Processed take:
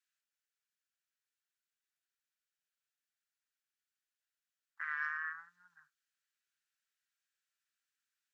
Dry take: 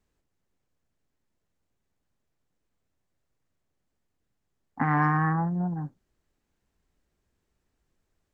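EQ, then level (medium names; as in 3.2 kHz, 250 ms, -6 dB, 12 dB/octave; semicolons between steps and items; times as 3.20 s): elliptic high-pass 1.4 kHz, stop band 50 dB; band-stop 2.1 kHz, Q 19; -4.5 dB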